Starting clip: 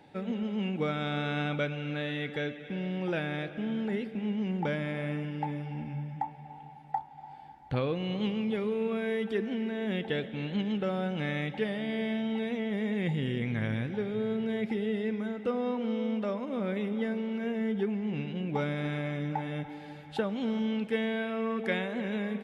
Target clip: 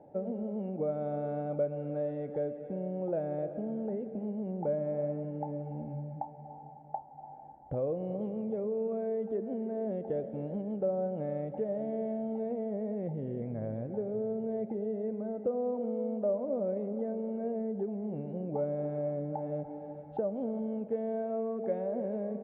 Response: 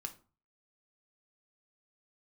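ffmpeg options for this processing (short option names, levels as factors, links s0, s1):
-af "acompressor=threshold=0.0224:ratio=3,lowpass=f=610:t=q:w=4.2,volume=0.75"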